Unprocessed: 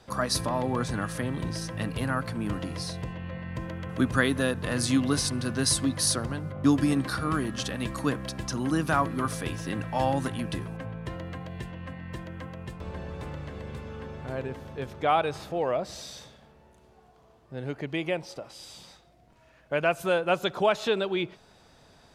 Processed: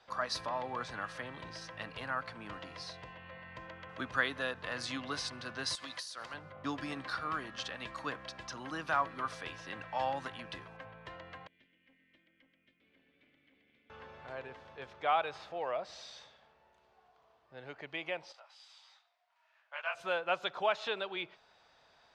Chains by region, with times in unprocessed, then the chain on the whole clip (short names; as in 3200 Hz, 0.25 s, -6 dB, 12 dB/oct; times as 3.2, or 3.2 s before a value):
5.75–6.34 tilt +3.5 dB/oct + compressor 20:1, threshold -27 dBFS
11.47–13.9 vowel filter i + tube stage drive 44 dB, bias 0.45
18.32–19.95 HPF 780 Hz 24 dB/oct + detuned doubles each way 48 cents
whole clip: Bessel low-pass 10000 Hz; three-band isolator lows -16 dB, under 570 Hz, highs -19 dB, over 5500 Hz; gain -4.5 dB